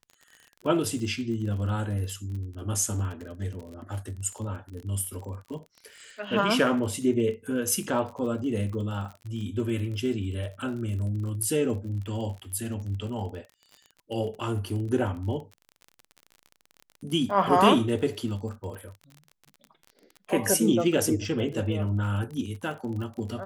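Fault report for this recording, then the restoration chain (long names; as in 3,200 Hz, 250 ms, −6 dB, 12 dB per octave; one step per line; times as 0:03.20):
surface crackle 41 per second −36 dBFS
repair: click removal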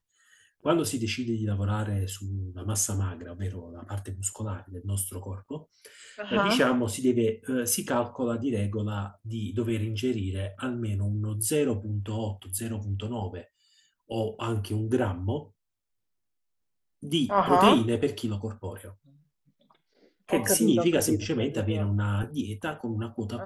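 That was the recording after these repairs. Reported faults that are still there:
none of them is left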